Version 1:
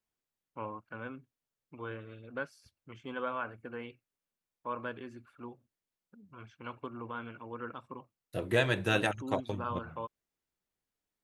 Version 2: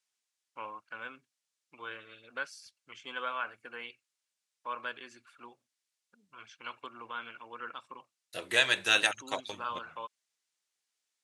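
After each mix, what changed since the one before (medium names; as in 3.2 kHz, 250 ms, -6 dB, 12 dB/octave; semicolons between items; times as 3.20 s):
master: add frequency weighting ITU-R 468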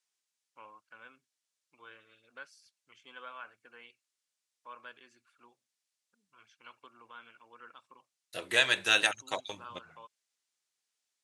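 first voice -10.5 dB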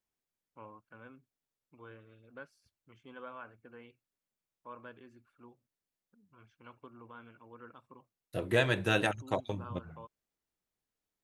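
master: remove frequency weighting ITU-R 468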